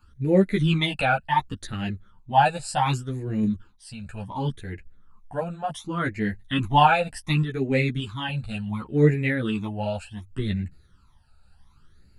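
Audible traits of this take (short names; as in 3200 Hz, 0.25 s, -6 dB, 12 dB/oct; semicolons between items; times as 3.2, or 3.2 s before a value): phasing stages 12, 0.68 Hz, lowest notch 330–1100 Hz; random-step tremolo; a shimmering, thickened sound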